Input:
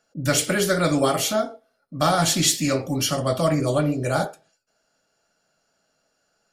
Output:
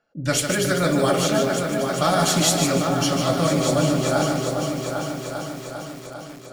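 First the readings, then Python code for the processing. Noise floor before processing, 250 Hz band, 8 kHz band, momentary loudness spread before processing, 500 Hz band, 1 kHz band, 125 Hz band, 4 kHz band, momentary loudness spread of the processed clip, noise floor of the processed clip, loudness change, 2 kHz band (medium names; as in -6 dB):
-71 dBFS, +3.0 dB, +0.5 dB, 7 LU, +2.5 dB, +2.0 dB, +2.0 dB, +1.0 dB, 15 LU, -39 dBFS, +0.5 dB, +2.0 dB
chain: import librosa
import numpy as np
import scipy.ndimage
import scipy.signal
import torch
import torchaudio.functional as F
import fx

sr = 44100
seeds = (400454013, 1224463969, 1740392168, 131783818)

y = fx.env_lowpass(x, sr, base_hz=2800.0, full_db=-16.0)
y = fx.echo_opening(y, sr, ms=398, hz=750, octaves=2, feedback_pct=70, wet_db=-3)
y = fx.echo_crushed(y, sr, ms=150, feedback_pct=35, bits=6, wet_db=-5.5)
y = F.gain(torch.from_numpy(y), -1.0).numpy()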